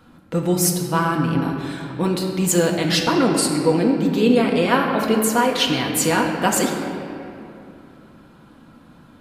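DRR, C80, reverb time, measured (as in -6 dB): 0.0 dB, 4.5 dB, 2.7 s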